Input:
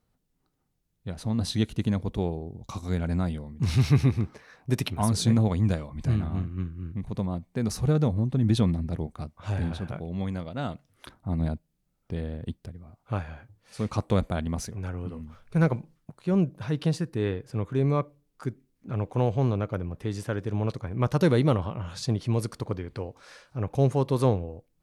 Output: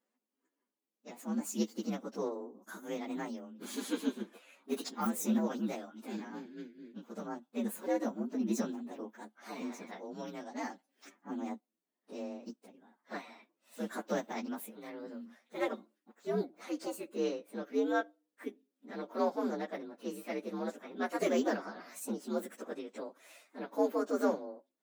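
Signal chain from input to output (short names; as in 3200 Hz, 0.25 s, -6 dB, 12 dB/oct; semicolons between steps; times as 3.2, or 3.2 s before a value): inharmonic rescaling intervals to 120%; brick-wall FIR high-pass 200 Hz; gain -2.5 dB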